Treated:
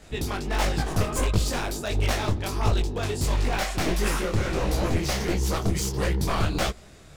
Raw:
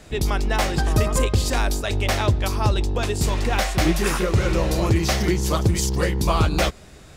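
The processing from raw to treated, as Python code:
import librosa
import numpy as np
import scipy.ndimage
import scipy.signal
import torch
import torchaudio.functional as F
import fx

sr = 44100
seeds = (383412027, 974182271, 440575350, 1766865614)

y = np.minimum(x, 2.0 * 10.0 ** (-17.5 / 20.0) - x)
y = fx.detune_double(y, sr, cents=51)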